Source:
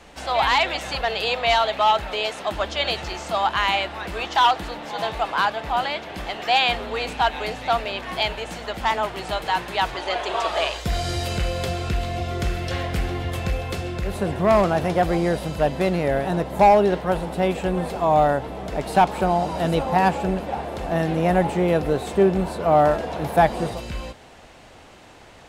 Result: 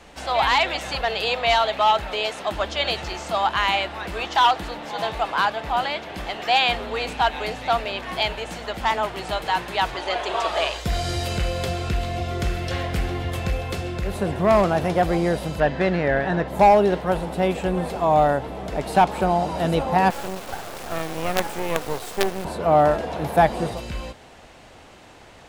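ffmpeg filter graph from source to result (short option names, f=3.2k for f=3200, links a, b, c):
-filter_complex "[0:a]asettb=1/sr,asplit=3[a][b][c];[a]atrim=end=15.604[d];[b]atrim=start=15.6:end=16.48,asetpts=PTS-STARTPTS,afade=t=in:d=0.004:c=qsin,afade=t=out:st=0.876:d=0.004:c=qsin,lowpass=4.8k,equalizer=f=1.7k:w=3.4:g=9.5[e];[c]atrim=start=16.476[f];[d][e]acrossfade=d=0.004:c1=hsin:c2=qsin[g];[g][f]acrossfade=d=0.004:c1=qsin:c2=hsin,asettb=1/sr,asplit=3[h][i][j];[h]atrim=end=20.104[k];[i]atrim=start=20.1:end=22.45,asetpts=PTS-STARTPTS,afade=t=in:d=0.004:c=qsin,afade=t=out:st=2.346:d=0.004:c=qsin,bass=f=250:g=-15,treble=f=4k:g=4,acrusher=bits=3:dc=4:mix=0:aa=0.000001[l];[j]atrim=start=22.446[m];[k][l]acrossfade=d=0.004:c1=hsin:c2=qsin[n];[n][m]acrossfade=d=0.004:c1=qsin:c2=hsin"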